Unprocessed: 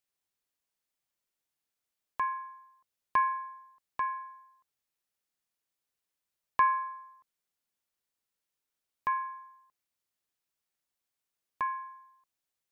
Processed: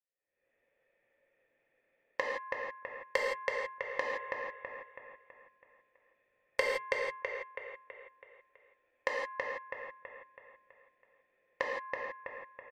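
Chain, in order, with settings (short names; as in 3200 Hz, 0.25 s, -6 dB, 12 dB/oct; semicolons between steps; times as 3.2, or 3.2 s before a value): self-modulated delay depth 0.23 ms; recorder AGC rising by 66 dB/s; vocal tract filter e; feedback echo 0.327 s, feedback 46%, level -5 dB; soft clip -16 dBFS, distortion -10 dB; 7.05–9.21 bell 160 Hz -13 dB 0.45 oct; non-linear reverb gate 0.19 s flat, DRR -2 dB; gain -2.5 dB; MP3 80 kbps 44100 Hz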